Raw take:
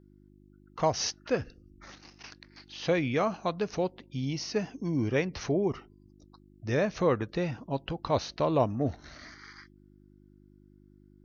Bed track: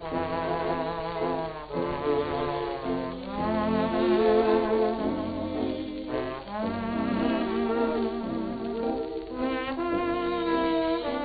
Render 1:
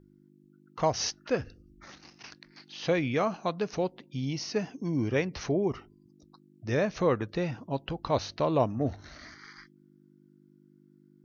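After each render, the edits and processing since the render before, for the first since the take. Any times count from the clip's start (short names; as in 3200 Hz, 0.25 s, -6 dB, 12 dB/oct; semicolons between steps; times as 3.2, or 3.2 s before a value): de-hum 50 Hz, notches 2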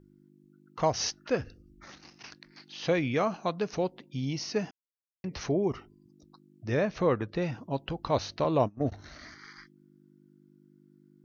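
4.71–5.24 mute; 6.68–7.42 air absorption 85 m; 8.44–8.92 gate -31 dBFS, range -22 dB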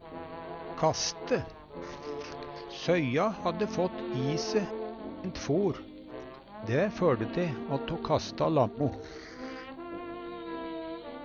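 add bed track -12.5 dB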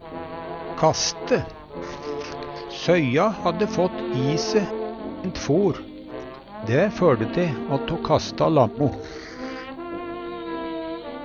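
gain +8 dB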